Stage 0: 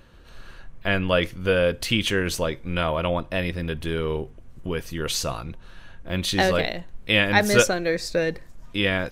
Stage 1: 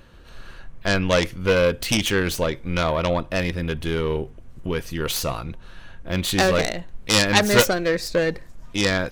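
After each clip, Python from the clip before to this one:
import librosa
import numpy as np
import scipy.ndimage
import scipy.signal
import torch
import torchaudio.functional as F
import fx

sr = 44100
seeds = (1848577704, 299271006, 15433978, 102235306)

y = fx.self_delay(x, sr, depth_ms=0.2)
y = y * librosa.db_to_amplitude(2.5)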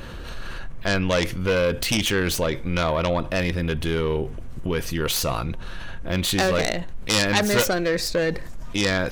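y = fx.env_flatten(x, sr, amount_pct=50)
y = y * librosa.db_to_amplitude(-5.5)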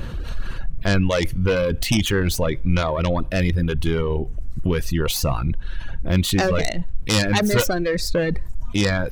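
y = fx.dereverb_blind(x, sr, rt60_s=1.1)
y = fx.low_shelf(y, sr, hz=220.0, db=11.0)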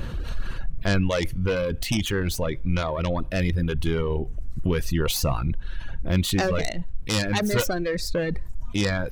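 y = fx.rider(x, sr, range_db=4, speed_s=2.0)
y = y * librosa.db_to_amplitude(-4.5)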